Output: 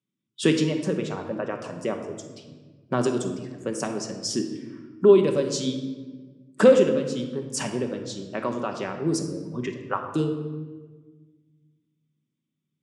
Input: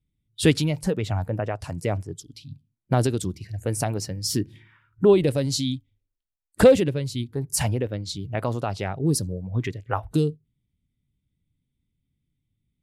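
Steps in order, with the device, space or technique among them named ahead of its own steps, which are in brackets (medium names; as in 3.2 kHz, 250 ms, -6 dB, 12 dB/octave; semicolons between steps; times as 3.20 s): television speaker (cabinet simulation 180–7600 Hz, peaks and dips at 180 Hz -6 dB, 760 Hz -9 dB, 1.1 kHz +5 dB, 2.1 kHz -6 dB, 4.2 kHz -9 dB); simulated room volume 1200 m³, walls mixed, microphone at 1.1 m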